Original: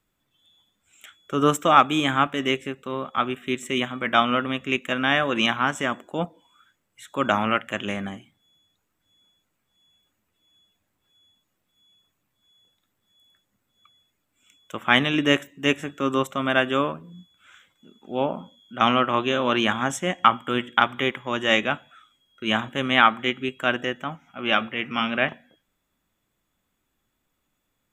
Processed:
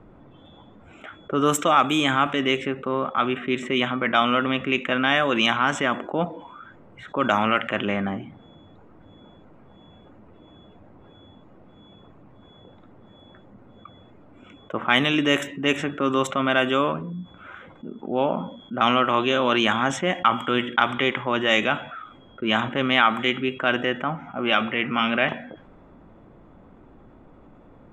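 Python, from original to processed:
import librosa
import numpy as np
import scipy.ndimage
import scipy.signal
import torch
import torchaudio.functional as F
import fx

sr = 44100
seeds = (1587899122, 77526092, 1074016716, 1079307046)

y = fx.env_lowpass(x, sr, base_hz=730.0, full_db=-15.5)
y = fx.low_shelf(y, sr, hz=180.0, db=-5.0)
y = fx.notch(y, sr, hz=1700.0, q=24.0)
y = fx.env_flatten(y, sr, amount_pct=50)
y = F.gain(torch.from_numpy(y), -3.5).numpy()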